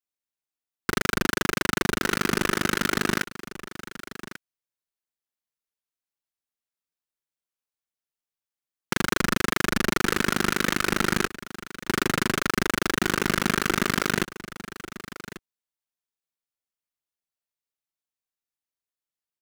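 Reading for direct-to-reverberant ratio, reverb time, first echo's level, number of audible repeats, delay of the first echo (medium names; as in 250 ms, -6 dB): no reverb, no reverb, -15.0 dB, 1, 1142 ms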